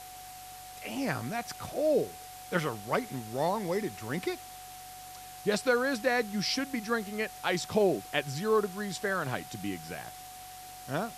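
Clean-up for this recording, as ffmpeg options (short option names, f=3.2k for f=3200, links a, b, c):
-af "bandreject=f=47.7:t=h:w=4,bandreject=f=95.4:t=h:w=4,bandreject=f=143.1:t=h:w=4,bandreject=f=740:w=30,afwtdn=0.004"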